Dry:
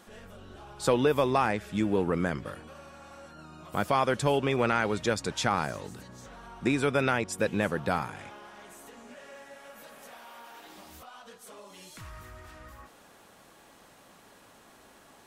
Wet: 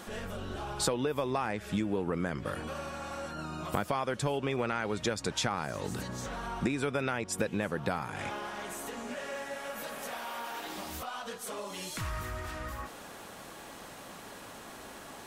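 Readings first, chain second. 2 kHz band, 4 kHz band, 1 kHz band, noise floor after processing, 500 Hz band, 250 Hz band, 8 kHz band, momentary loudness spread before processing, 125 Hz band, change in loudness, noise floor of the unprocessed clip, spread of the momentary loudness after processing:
−3.5 dB, 0.0 dB, −4.0 dB, −48 dBFS, −5.0 dB, −3.5 dB, +2.5 dB, 22 LU, −2.5 dB, −7.0 dB, −57 dBFS, 14 LU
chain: downward compressor 10 to 1, threshold −37 dBFS, peak gain reduction 17.5 dB
level +9 dB

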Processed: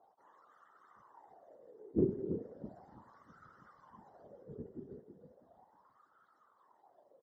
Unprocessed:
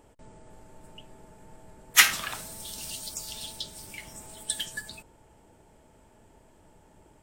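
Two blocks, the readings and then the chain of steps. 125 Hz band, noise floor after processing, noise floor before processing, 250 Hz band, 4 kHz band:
+3.5 dB, −71 dBFS, −59 dBFS, +9.5 dB, below −40 dB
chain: frequency axis turned over on the octave scale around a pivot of 570 Hz
Butterworth band-reject 2,500 Hz, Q 1.9
repeating echo 324 ms, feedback 48%, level −8 dB
random phases in short frames
in parallel at −6 dB: wave folding −11 dBFS
on the sum: LFO wah 0.36 Hz 390–1,300 Hz, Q 8.5
level +4 dB

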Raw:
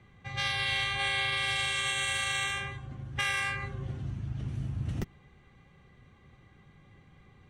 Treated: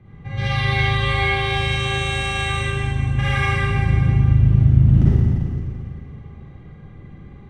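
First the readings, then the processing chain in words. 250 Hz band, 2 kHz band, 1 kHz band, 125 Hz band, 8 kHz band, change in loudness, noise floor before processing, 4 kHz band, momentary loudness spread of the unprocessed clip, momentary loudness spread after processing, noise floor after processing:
+20.0 dB, +7.5 dB, +11.5 dB, +21.5 dB, can't be measured, +12.5 dB, −60 dBFS, +4.5 dB, 11 LU, 14 LU, −41 dBFS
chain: low-pass filter 2,100 Hz 6 dB per octave
low-shelf EQ 440 Hz +11 dB
four-comb reverb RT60 2.3 s, DRR −9.5 dB

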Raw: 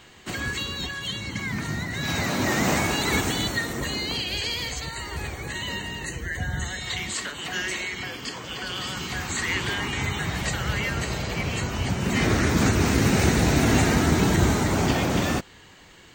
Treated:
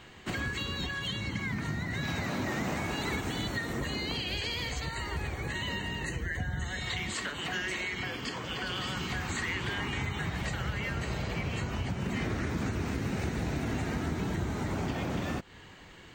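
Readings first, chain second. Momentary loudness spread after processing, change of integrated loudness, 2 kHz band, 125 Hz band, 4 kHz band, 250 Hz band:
3 LU, −8.5 dB, −7.0 dB, −8.0 dB, −8.0 dB, −9.5 dB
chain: bass and treble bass +2 dB, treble −7 dB
downward compressor, threshold −29 dBFS, peak gain reduction 14.5 dB
level −1 dB

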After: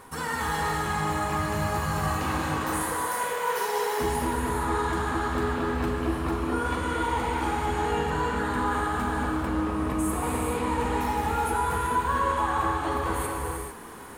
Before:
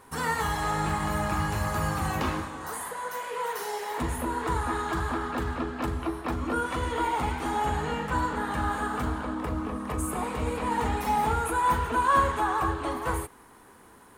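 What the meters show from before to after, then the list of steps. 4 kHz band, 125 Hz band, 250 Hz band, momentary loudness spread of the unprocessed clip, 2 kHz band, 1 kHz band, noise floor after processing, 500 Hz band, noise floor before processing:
+2.0 dB, +1.0 dB, +2.5 dB, 7 LU, +1.5 dB, +1.0 dB, −34 dBFS, +3.0 dB, −53 dBFS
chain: reversed playback
downward compressor 4 to 1, threshold −36 dBFS, peak gain reduction 15 dB
reversed playback
reverb whose tail is shaped and stops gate 480 ms flat, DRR −2 dB
level +6.5 dB

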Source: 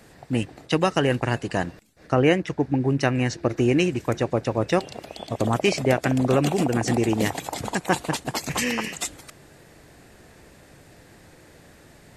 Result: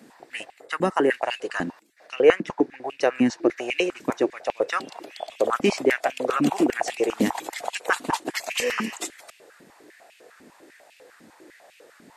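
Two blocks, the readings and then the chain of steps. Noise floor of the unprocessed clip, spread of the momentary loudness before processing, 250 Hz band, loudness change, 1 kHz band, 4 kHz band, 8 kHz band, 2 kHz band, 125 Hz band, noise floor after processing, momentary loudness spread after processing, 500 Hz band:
−51 dBFS, 8 LU, −2.5 dB, −1.0 dB, 0.0 dB, −1.5 dB, −3.5 dB, +1.0 dB, −15.0 dB, −56 dBFS, 13 LU, +0.5 dB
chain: gain on a spectral selection 0:00.51–0:01.11, 2,200–6,900 Hz −7 dB
high-pass on a step sequencer 10 Hz 240–2,600 Hz
level −3.5 dB

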